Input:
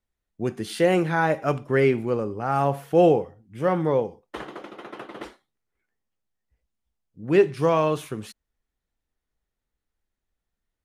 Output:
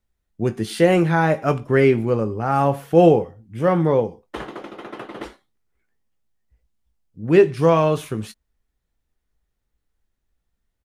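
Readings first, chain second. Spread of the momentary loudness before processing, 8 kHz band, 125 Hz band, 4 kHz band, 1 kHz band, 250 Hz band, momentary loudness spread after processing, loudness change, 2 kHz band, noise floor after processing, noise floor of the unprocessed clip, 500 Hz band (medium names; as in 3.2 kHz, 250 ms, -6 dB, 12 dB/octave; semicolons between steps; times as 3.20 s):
20 LU, no reading, +6.5 dB, +3.5 dB, +3.5 dB, +5.5 dB, 20 LU, +4.5 dB, +3.0 dB, -76 dBFS, -85 dBFS, +4.0 dB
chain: bass shelf 180 Hz +6 dB; doubling 18 ms -11.5 dB; trim +3 dB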